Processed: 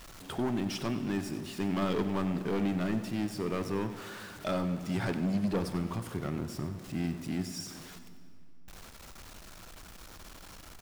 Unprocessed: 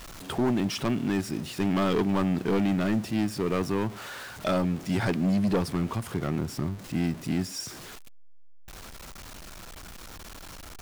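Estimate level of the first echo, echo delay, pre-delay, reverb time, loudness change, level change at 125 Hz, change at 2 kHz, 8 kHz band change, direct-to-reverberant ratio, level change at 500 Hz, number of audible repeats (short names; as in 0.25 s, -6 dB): -14.0 dB, 94 ms, 22 ms, 2.5 s, -5.5 dB, -5.5 dB, -5.5 dB, -5.5 dB, 9.0 dB, -5.5 dB, 1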